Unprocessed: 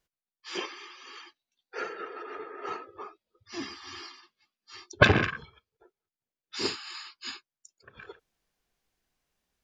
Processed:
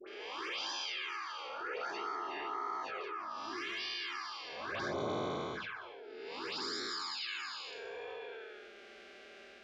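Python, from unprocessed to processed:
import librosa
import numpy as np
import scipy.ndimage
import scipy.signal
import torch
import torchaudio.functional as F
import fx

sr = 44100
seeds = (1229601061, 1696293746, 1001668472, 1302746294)

y = fx.spec_blur(x, sr, span_ms=473.0)
y = fx.weighting(y, sr, curve='A')
y = fx.env_lowpass(y, sr, base_hz=1800.0, full_db=-38.0)
y = fx.notch(y, sr, hz=1800.0, q=18.0)
y = fx.env_flanger(y, sr, rest_ms=5.1, full_db=-35.0)
y = fx.transient(y, sr, attack_db=6, sustain_db=-4)
y = fx.env_phaser(y, sr, low_hz=160.0, high_hz=2700.0, full_db=-43.0)
y = fx.high_shelf(y, sr, hz=3600.0, db=-8.5, at=(4.81, 7.14))
y = fx.dispersion(y, sr, late='highs', ms=77.0, hz=1200.0)
y = fx.env_flatten(y, sr, amount_pct=70)
y = y * 10.0 ** (3.0 / 20.0)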